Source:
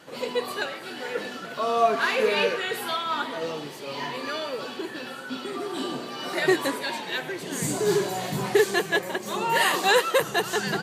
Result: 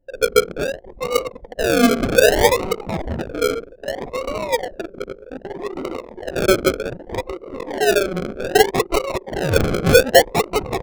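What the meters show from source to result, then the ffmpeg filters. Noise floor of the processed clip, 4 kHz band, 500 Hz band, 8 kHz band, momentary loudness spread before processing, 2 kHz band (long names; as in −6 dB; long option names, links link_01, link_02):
−44 dBFS, +3.5 dB, +8.0 dB, +6.0 dB, 12 LU, +3.5 dB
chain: -af "highpass=frequency=280:width=0.5412,highpass=frequency=280:width=1.3066,equalizer=frequency=520:width_type=q:width=4:gain=10,equalizer=frequency=1100:width_type=q:width=4:gain=-6,equalizer=frequency=1900:width_type=q:width=4:gain=-6,equalizer=frequency=3200:width_type=q:width=4:gain=5,lowpass=frequency=3600:width=0.5412,lowpass=frequency=3600:width=1.3066,bandreject=frequency=50:width_type=h:width=6,bandreject=frequency=100:width_type=h:width=6,bandreject=frequency=150:width_type=h:width=6,bandreject=frequency=200:width_type=h:width=6,bandreject=frequency=250:width_type=h:width=6,bandreject=frequency=300:width_type=h:width=6,bandreject=frequency=350:width_type=h:width=6,bandreject=frequency=400:width_type=h:width=6,acrusher=samples=37:mix=1:aa=0.000001:lfo=1:lforange=22.2:lforate=0.64,asoftclip=type=hard:threshold=-10dB,anlmdn=63.1,volume=5.5dB"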